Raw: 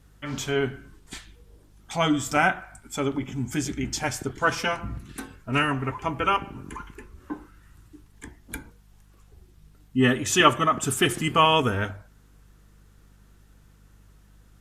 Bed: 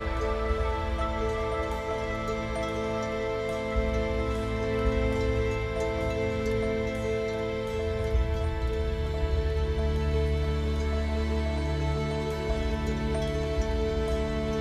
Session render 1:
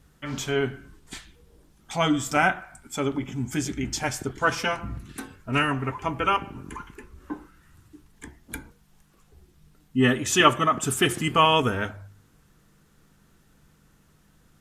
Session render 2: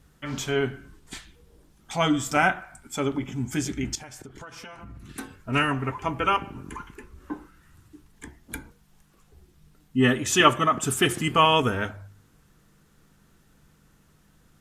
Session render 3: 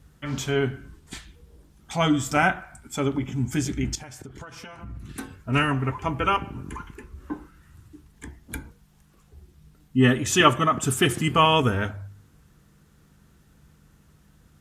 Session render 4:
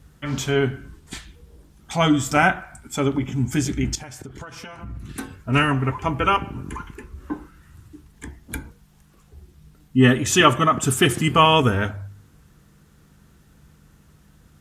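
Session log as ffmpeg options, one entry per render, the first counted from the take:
-af "bandreject=f=50:t=h:w=4,bandreject=f=100:t=h:w=4"
-filter_complex "[0:a]asettb=1/sr,asplit=3[s0][s1][s2];[s0]atrim=end=3.954[s3];[s1]atrim=start=3.95:end=5.1,asetpts=PTS-STARTPTS,afade=t=in:d=0.004:c=qsin,afade=t=out:st=1.146:d=0.004:c=qsin,acompressor=threshold=0.0126:ratio=16:attack=3.2:release=140:knee=1:detection=peak[s4];[s2]atrim=start=5.096[s5];[s3][s4]acrossfade=d=0.004:c1=hsin:c2=qsin[s6];[s6][s5]acrossfade=d=0.004:c1=qsin:c2=hsin"
-af "highpass=51,lowshelf=f=120:g=10.5"
-af "volume=1.5,alimiter=limit=0.708:level=0:latency=1"

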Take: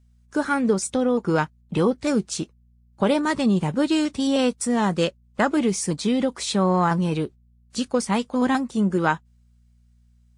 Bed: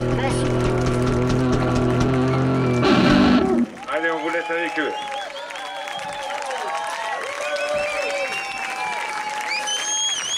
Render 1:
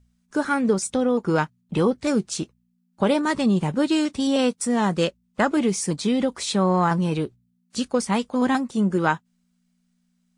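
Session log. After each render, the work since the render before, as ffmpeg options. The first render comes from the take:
-af "bandreject=f=60:t=h:w=4,bandreject=f=120:t=h:w=4"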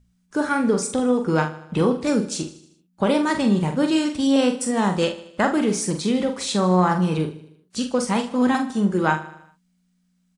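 -filter_complex "[0:a]asplit=2[s0][s1];[s1]adelay=44,volume=0.473[s2];[s0][s2]amix=inputs=2:normalize=0,aecho=1:1:77|154|231|308|385:0.178|0.096|0.0519|0.028|0.0151"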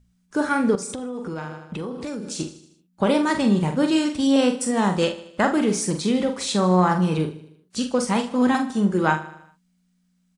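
-filter_complex "[0:a]asettb=1/sr,asplit=3[s0][s1][s2];[s0]atrim=end=0.754[s3];[s1]atrim=start=0.75:end=2.4,asetpts=PTS-STARTPTS,afade=t=in:d=0.004:c=qsin,afade=t=out:st=1.646:d=0.004:c=qsin,acompressor=threshold=0.0447:ratio=8:attack=3.2:release=140:knee=1:detection=peak[s4];[s2]atrim=start=2.396[s5];[s3][s4]acrossfade=d=0.004:c1=hsin:c2=qsin[s6];[s6][s5]acrossfade=d=0.004:c1=qsin:c2=hsin"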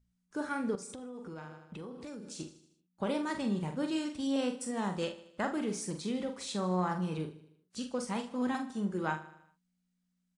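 -af "volume=0.211"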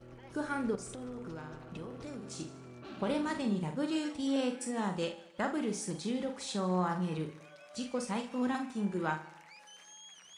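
-filter_complex "[1:a]volume=0.0282[s0];[0:a][s0]amix=inputs=2:normalize=0"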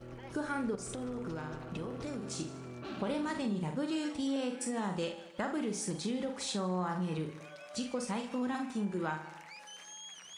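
-filter_complex "[0:a]asplit=2[s0][s1];[s1]alimiter=level_in=1.5:limit=0.0631:level=0:latency=1,volume=0.668,volume=0.708[s2];[s0][s2]amix=inputs=2:normalize=0,acompressor=threshold=0.0178:ratio=2"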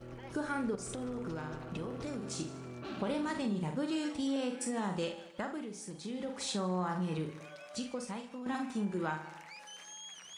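-filter_complex "[0:a]asplit=4[s0][s1][s2][s3];[s0]atrim=end=5.69,asetpts=PTS-STARTPTS,afade=t=out:st=5.22:d=0.47:silence=0.375837[s4];[s1]atrim=start=5.69:end=5.98,asetpts=PTS-STARTPTS,volume=0.376[s5];[s2]atrim=start=5.98:end=8.46,asetpts=PTS-STARTPTS,afade=t=in:d=0.47:silence=0.375837,afade=t=out:st=1.58:d=0.9:silence=0.298538[s6];[s3]atrim=start=8.46,asetpts=PTS-STARTPTS,afade=t=in:d=0.004:c=hsin:silence=0.298538[s7];[s4][s5][s6][s7]concat=n=4:v=0:a=1"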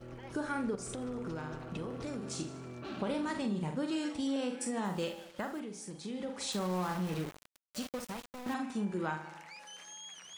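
-filter_complex "[0:a]asettb=1/sr,asplit=3[s0][s1][s2];[s0]atrim=end=4.854[s3];[s1]atrim=start=4.85:end=5.6,asetpts=PTS-STARTPTS,afade=t=in:d=0.004:c=qsin,afade=t=out:st=0.746:d=0.004:c=qsin,acrusher=bits=8:mix=0:aa=0.5[s4];[s2]atrim=start=5.596[s5];[s3][s4]acrossfade=d=0.004:c1=hsin:c2=qsin[s6];[s6][s5]acrossfade=d=0.004:c1=qsin:c2=hsin,asettb=1/sr,asplit=3[s7][s8][s9];[s7]atrim=end=6.524[s10];[s8]atrim=start=6.52:end=8.54,asetpts=PTS-STARTPTS,afade=t=in:d=0.004:c=qsin,afade=t=out:st=2.016:d=0.004:c=qsin,aeval=exprs='val(0)*gte(abs(val(0)),0.01)':c=same[s11];[s9]atrim=start=8.536[s12];[s10][s11]acrossfade=d=0.004:c1=hsin:c2=qsin[s13];[s13][s12]acrossfade=d=0.004:c1=qsin:c2=hsin"

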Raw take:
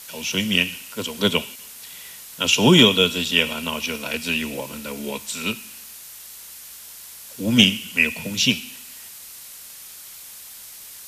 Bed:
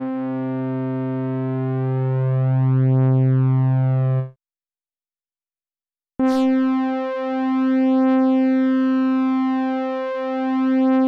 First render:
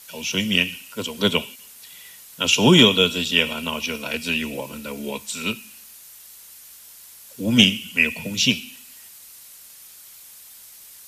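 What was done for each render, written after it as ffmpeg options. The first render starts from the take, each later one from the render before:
-af "afftdn=nr=6:nf=-41"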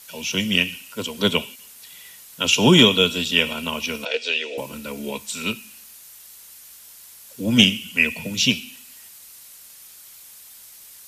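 -filter_complex "[0:a]asettb=1/sr,asplit=3[s0][s1][s2];[s0]atrim=end=4.054[s3];[s1]atrim=start=4.05:end=4.58,asetpts=PTS-STARTPTS,afade=t=in:d=0.004:c=qsin,afade=t=out:st=0.526:d=0.004:c=qsin,highpass=f=410:w=0.5412,highpass=f=410:w=1.3066,equalizer=f=470:t=q:w=4:g=10,equalizer=f=1100:t=q:w=4:g=-10,equalizer=f=3500:t=q:w=4:g=6,lowpass=f=6300:w=0.5412,lowpass=f=6300:w=1.3066[s4];[s2]atrim=start=4.576[s5];[s3][s4]acrossfade=d=0.004:c1=hsin:c2=qsin[s6];[s6][s5]acrossfade=d=0.004:c1=qsin:c2=hsin"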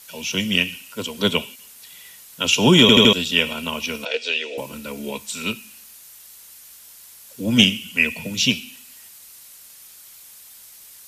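-filter_complex "[0:a]asplit=5[s0][s1][s2][s3][s4];[s0]atrim=end=2.892[s5];[s1]atrim=start=2.808:end=2.892[s6];[s2]atrim=start=2.808:end=2.892[s7];[s3]atrim=start=2.808:end=2.892[s8];[s4]atrim=start=3.128[s9];[s5][s6]acrossfade=d=0.004:c1=hsin:c2=hsin[s10];[s10][s7]acrossfade=d=0.004:c1=hsin:c2=hsin[s11];[s11][s8]acrossfade=d=0.004:c1=hsin:c2=hsin[s12];[s12][s9]acrossfade=d=0.004:c1=hsin:c2=hsin"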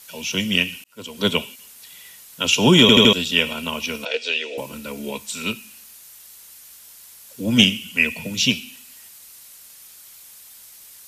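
-filter_complex "[0:a]asplit=2[s0][s1];[s0]atrim=end=0.84,asetpts=PTS-STARTPTS,afade=t=out:st=0.836:d=0.004:c=hsin[s2];[s1]atrim=start=0.84,asetpts=PTS-STARTPTS,afade=t=in:d=0.44[s3];[s2][s3]concat=n=2:v=0:a=1"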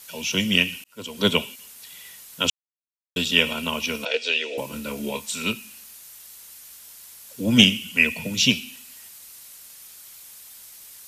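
-filter_complex "[0:a]asettb=1/sr,asplit=3[s0][s1][s2];[s0]atrim=end=4.694[s3];[s1]atrim=start=4.69:end=5.36,asetpts=PTS-STARTPTS,afade=t=in:d=0.004:c=qsin,afade=t=out:st=0.666:d=0.004:c=qsin,asplit=2[s4][s5];[s5]adelay=27,volume=0.398[s6];[s4][s6]amix=inputs=2:normalize=0,atrim=end_sample=29547[s7];[s2]atrim=start=5.356[s8];[s3][s7]acrossfade=d=0.004:c1=hsin:c2=qsin[s9];[s9][s8]acrossfade=d=0.004:c1=qsin:c2=hsin,asplit=3[s10][s11][s12];[s10]atrim=end=2.5,asetpts=PTS-STARTPTS,afade=t=out:st=2.496:d=0.004:c=hsin[s13];[s11]atrim=start=2.5:end=3.16,asetpts=PTS-STARTPTS,volume=0[s14];[s12]atrim=start=3.16,asetpts=PTS-STARTPTS,afade=t=in:d=0.004:c=hsin[s15];[s13][s14][s15]concat=n=3:v=0:a=1"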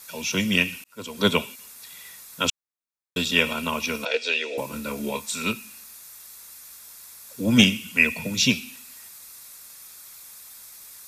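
-af "equalizer=f=1200:t=o:w=0.67:g=4,bandreject=f=3000:w=6.8"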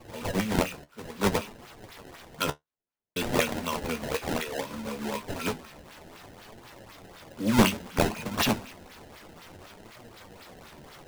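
-af "acrusher=samples=22:mix=1:aa=0.000001:lfo=1:lforange=35.2:lforate=4,flanger=delay=8.1:depth=5.9:regen=49:speed=0.6:shape=triangular"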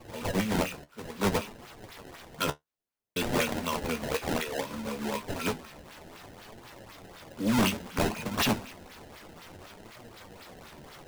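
-af "asoftclip=type=hard:threshold=0.0944"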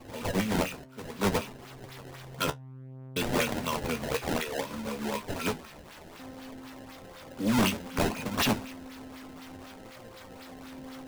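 -filter_complex "[1:a]volume=0.0355[s0];[0:a][s0]amix=inputs=2:normalize=0"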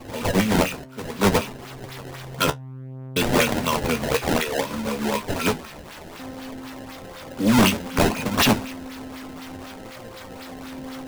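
-af "volume=2.66"

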